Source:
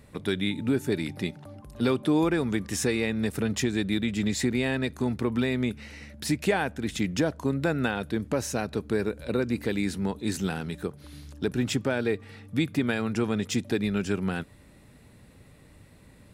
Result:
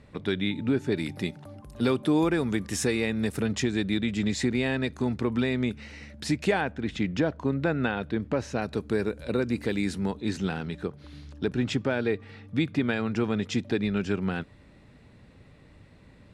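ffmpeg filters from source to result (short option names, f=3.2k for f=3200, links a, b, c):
-af "asetnsamples=n=441:p=0,asendcmd='0.98 lowpass f 12000;3.46 lowpass f 7000;6.61 lowpass f 3600;8.62 lowpass f 9300;10.15 lowpass f 4800',lowpass=4.8k"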